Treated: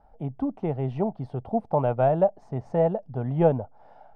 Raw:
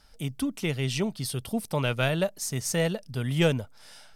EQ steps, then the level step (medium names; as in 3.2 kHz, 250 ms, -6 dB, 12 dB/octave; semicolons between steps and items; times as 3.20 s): resonant low-pass 770 Hz, resonance Q 4.9; 0.0 dB